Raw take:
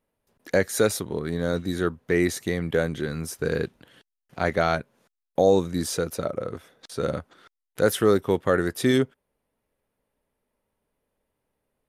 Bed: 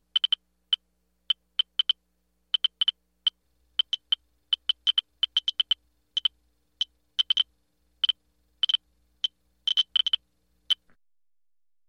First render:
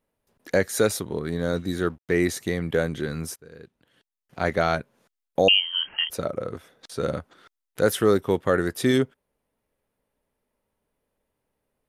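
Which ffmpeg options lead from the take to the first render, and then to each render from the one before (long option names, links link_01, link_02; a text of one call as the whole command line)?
ffmpeg -i in.wav -filter_complex "[0:a]asettb=1/sr,asplit=3[link_01][link_02][link_03];[link_01]atrim=end=1.764[link_04];[link_02]atrim=start=1.76:end=2.28,asetpts=PTS-STARTPTS,afade=type=in:duration=0.004:curve=qsin,afade=type=out:start_time=0.516:duration=0.004:curve=qsin,aeval=exprs='sgn(val(0))*max(abs(val(0))-0.00211,0)':channel_layout=same[link_05];[link_03]atrim=start=2.276[link_06];[link_04][link_05]acrossfade=duration=0.004:curve1=hsin:curve2=qsin[link_07];[link_07][link_06]acrossfade=duration=0.004:curve1=qsin:curve2=hsin,asettb=1/sr,asplit=3[link_08][link_09][link_10];[link_08]atrim=end=5.484[link_11];[link_09]atrim=start=5.48:end=6.1,asetpts=PTS-STARTPTS,afade=type=in:duration=0.004:curve=qsin,afade=type=out:start_time=0.616:duration=0.004:curve=qsin,lowpass=frequency=2800:width_type=q:width=0.5098,lowpass=frequency=2800:width_type=q:width=0.6013,lowpass=frequency=2800:width_type=q:width=0.9,lowpass=frequency=2800:width_type=q:width=2.563,afreqshift=-3300[link_12];[link_10]atrim=start=6.096[link_13];[link_11][link_12]acrossfade=duration=0.004:curve1=hsin:curve2=qsin[link_14];[link_14][link_13]acrossfade=duration=0.004:curve1=qsin:curve2=hsin,asplit=2[link_15][link_16];[link_15]atrim=end=3.36,asetpts=PTS-STARTPTS,afade=type=out:start_time=3.356:duration=0.004:curve=hsin:silence=0.0749894[link_17];[link_16]atrim=start=3.36,asetpts=PTS-STARTPTS,afade=type=in:duration=1.1:curve=qua:silence=0.0749894[link_18];[link_17][link_18]concat=n=2:v=0:a=1" out.wav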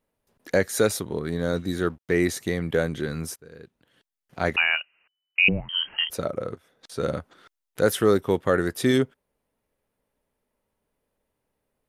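ffmpeg -i in.wav -filter_complex "[0:a]asettb=1/sr,asplit=3[link_01][link_02][link_03];[link_01]atrim=end=4.564[link_04];[link_02]atrim=start=4.56:end=5.69,asetpts=PTS-STARTPTS,afade=type=in:duration=0.004:curve=qsin,afade=type=out:start_time=1.126:duration=0.004:curve=qsin,lowpass=frequency=2600:width_type=q:width=0.5098,lowpass=frequency=2600:width_type=q:width=0.6013,lowpass=frequency=2600:width_type=q:width=0.9,lowpass=frequency=2600:width_type=q:width=2.563,afreqshift=-3000[link_05];[link_03]atrim=start=5.686[link_06];[link_04][link_05]acrossfade=duration=0.004:curve1=hsin:curve2=qsin[link_07];[link_07][link_06]acrossfade=duration=0.004:curve1=qsin:curve2=hsin,asplit=2[link_08][link_09];[link_08]atrim=end=6.55,asetpts=PTS-STARTPTS,afade=type=out:start_time=6.546:duration=0.004:curve=hsin:silence=0.16788[link_10];[link_09]atrim=start=6.55,asetpts=PTS-STARTPTS,afade=type=in:duration=0.46:silence=0.16788[link_11];[link_10][link_11]concat=n=2:v=0:a=1" out.wav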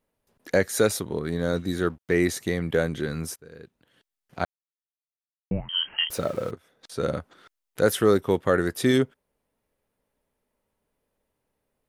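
ffmpeg -i in.wav -filter_complex "[0:a]asettb=1/sr,asplit=3[link_01][link_02][link_03];[link_01]atrim=end=6.104[link_04];[link_02]atrim=start=6.1:end=6.51,asetpts=PTS-STARTPTS,afade=type=in:duration=0.004:curve=qsin,afade=type=out:start_time=0.406:duration=0.004:curve=qsin,aeval=exprs='val(0)+0.5*0.0126*sgn(val(0))':channel_layout=same[link_05];[link_03]atrim=start=6.506[link_06];[link_04][link_05]acrossfade=duration=0.004:curve1=hsin:curve2=qsin[link_07];[link_07][link_06]acrossfade=duration=0.004:curve1=qsin:curve2=hsin,asplit=3[link_08][link_09][link_10];[link_08]atrim=end=4.45,asetpts=PTS-STARTPTS,afade=type=out:start_time=4.446:duration=0.004:curve=hsin[link_11];[link_09]atrim=start=4.45:end=5.51,asetpts=PTS-STARTPTS,volume=0[link_12];[link_10]atrim=start=5.51,asetpts=PTS-STARTPTS,afade=type=in:duration=0.004:curve=hsin[link_13];[link_11][link_12][link_13]concat=n=3:v=0:a=1" out.wav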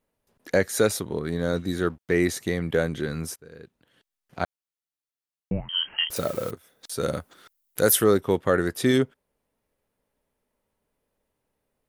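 ffmpeg -i in.wav -filter_complex "[0:a]asettb=1/sr,asplit=3[link_01][link_02][link_03];[link_01]atrim=end=6.164[link_04];[link_02]atrim=start=6.16:end=8.04,asetpts=PTS-STARTPTS,afade=type=in:duration=0.004:curve=qsin,afade=type=out:start_time=1.876:duration=0.004:curve=qsin,aemphasis=mode=production:type=50fm[link_05];[link_03]atrim=start=8.036[link_06];[link_04][link_05]acrossfade=duration=0.004:curve1=hsin:curve2=qsin[link_07];[link_07][link_06]acrossfade=duration=0.004:curve1=qsin:curve2=hsin" out.wav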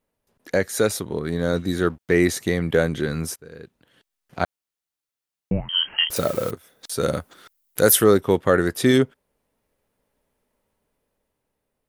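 ffmpeg -i in.wav -af "dynaudnorm=framelen=260:gausssize=9:maxgain=5dB" out.wav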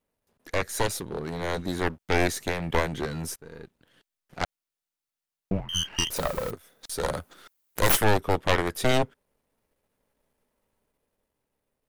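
ffmpeg -i in.wav -af "aeval=exprs='if(lt(val(0),0),0.447*val(0),val(0))':channel_layout=same,aeval=exprs='0.708*(cos(1*acos(clip(val(0)/0.708,-1,1)))-cos(1*PI/2))+0.355*(cos(4*acos(clip(val(0)/0.708,-1,1)))-cos(4*PI/2))':channel_layout=same" out.wav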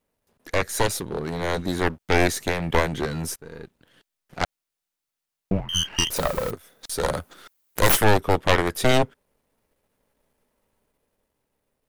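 ffmpeg -i in.wav -af "volume=4dB,alimiter=limit=-2dB:level=0:latency=1" out.wav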